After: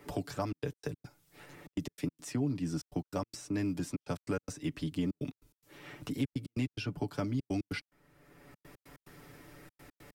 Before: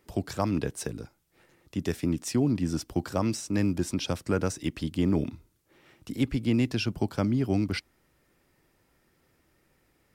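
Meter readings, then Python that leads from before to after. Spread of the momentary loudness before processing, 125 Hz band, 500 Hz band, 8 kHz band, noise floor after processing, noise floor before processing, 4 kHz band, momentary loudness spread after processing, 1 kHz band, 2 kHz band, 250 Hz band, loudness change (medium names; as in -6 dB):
9 LU, -7.5 dB, -8.0 dB, -9.5 dB, under -85 dBFS, -69 dBFS, -9.0 dB, 20 LU, -6.5 dB, -6.5 dB, -8.0 dB, -8.0 dB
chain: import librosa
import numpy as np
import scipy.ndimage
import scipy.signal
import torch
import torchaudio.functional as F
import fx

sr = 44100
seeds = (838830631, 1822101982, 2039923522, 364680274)

y = x + 0.68 * np.pad(x, (int(6.9 * sr / 1000.0), 0))[:len(x)]
y = fx.step_gate(y, sr, bpm=144, pattern='xxxxx.x.x.x', floor_db=-60.0, edge_ms=4.5)
y = fx.band_squash(y, sr, depth_pct=70)
y = F.gain(torch.from_numpy(y), -8.0).numpy()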